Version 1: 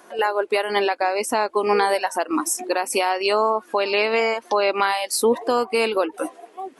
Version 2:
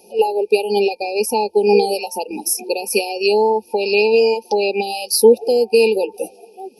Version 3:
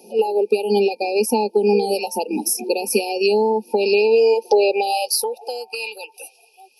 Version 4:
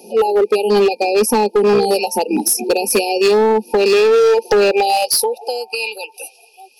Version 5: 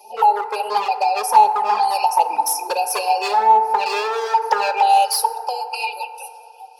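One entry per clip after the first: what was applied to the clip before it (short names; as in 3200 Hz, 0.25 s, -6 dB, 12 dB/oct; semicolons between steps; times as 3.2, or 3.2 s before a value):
FFT band-reject 900–2400 Hz; ripple EQ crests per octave 0.86, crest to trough 16 dB; gain +1.5 dB
compressor 6:1, threshold -16 dBFS, peak gain reduction 10.5 dB; high-pass sweep 220 Hz -> 1600 Hz, 3.72–6.12
hard clip -15 dBFS, distortion -12 dB; gain +6 dB
resonant high-pass 870 Hz, resonance Q 4.9; envelope flanger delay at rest 5.1 ms, full sweep at -4 dBFS; FDN reverb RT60 2.8 s, high-frequency decay 0.25×, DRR 8.5 dB; gain -3 dB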